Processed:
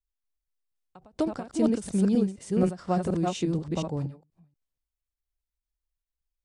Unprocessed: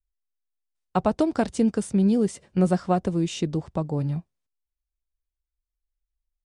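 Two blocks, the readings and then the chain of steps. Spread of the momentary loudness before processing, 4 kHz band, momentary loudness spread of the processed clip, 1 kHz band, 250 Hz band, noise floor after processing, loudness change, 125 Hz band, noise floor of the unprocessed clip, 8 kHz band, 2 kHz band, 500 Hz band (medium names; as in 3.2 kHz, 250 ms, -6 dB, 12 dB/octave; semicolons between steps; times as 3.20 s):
7 LU, -3.0 dB, 7 LU, -5.5 dB, -3.0 dB, under -85 dBFS, -3.0 dB, -4.0 dB, under -85 dBFS, -3.0 dB, -6.0 dB, -3.5 dB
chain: chunks repeated in reverse 239 ms, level -0.5 dB; endings held to a fixed fall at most 190 dB/s; trim -4.5 dB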